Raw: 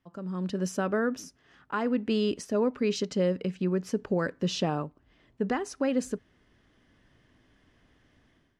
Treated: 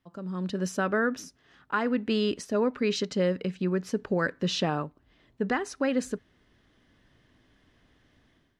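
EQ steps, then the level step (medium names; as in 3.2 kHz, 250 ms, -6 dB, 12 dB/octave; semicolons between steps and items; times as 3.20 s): peaking EQ 3.9 kHz +4.5 dB 0.36 oct; dynamic bell 1.7 kHz, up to +6 dB, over -46 dBFS, Q 1.2; 0.0 dB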